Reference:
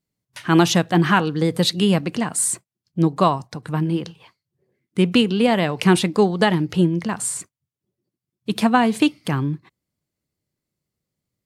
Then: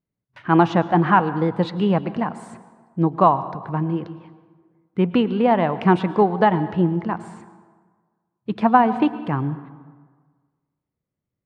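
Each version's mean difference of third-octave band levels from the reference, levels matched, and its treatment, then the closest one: 7.0 dB: LPF 1800 Hz 12 dB/oct; dynamic EQ 860 Hz, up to +8 dB, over -34 dBFS, Q 1.6; plate-style reverb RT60 1.5 s, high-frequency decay 0.6×, pre-delay 95 ms, DRR 14.5 dB; gain -2 dB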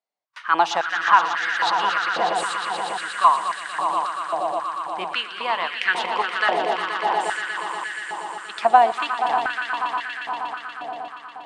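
13.5 dB: air absorption 110 m; swelling echo 0.119 s, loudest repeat 5, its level -9 dB; stepped high-pass 3.7 Hz 720–1700 Hz; gain -4 dB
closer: first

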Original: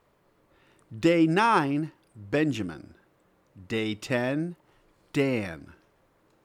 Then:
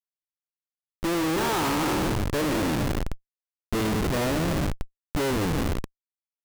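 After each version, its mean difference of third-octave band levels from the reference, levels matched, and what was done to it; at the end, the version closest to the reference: 15.0 dB: spectral trails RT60 2.52 s; high shelf 3100 Hz -5 dB; Schmitt trigger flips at -25.5 dBFS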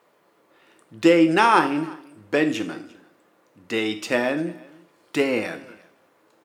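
3.5 dB: HPF 280 Hz 12 dB/oct; on a send: echo 0.346 s -24 dB; on the sum: two-slope reverb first 0.49 s, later 1.7 s, from -27 dB, DRR 7 dB; gain +5.5 dB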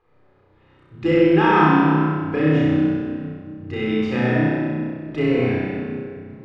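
10.0 dB: LPF 2900 Hz 12 dB/oct; flutter echo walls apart 5.5 m, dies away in 1.3 s; shoebox room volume 3700 m³, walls mixed, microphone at 3.9 m; gain -3.5 dB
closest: second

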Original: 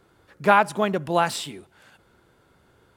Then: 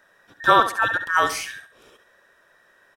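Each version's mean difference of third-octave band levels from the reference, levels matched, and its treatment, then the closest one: 8.5 dB: band inversion scrambler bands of 2000 Hz; on a send: feedback echo 69 ms, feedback 31%, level -11 dB; on the sum: gain +1 dB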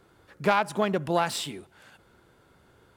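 3.0 dB: self-modulated delay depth 0.084 ms; compressor 2.5:1, threshold -21 dBFS, peak gain reduction 7 dB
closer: second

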